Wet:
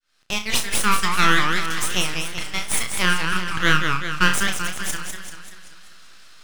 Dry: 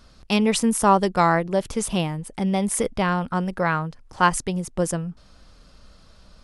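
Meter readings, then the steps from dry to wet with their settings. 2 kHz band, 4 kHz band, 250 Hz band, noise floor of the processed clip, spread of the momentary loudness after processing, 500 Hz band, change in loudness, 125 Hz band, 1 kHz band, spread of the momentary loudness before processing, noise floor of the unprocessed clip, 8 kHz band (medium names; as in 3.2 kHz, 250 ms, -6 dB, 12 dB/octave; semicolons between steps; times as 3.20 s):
+8.5 dB, +9.5 dB, -6.5 dB, -44 dBFS, 10 LU, -9.5 dB, +1.0 dB, -3.5 dB, -2.0 dB, 9 LU, -52 dBFS, +3.5 dB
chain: fade-in on the opening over 0.74 s; steep high-pass 1.4 kHz 36 dB/octave; treble shelf 6 kHz -11.5 dB; band-stop 4.6 kHz, Q 15; half-wave rectifier; flutter echo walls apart 5.6 m, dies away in 0.26 s; loudness maximiser +16.5 dB; modulated delay 193 ms, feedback 55%, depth 204 cents, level -5.5 dB; trim -1.5 dB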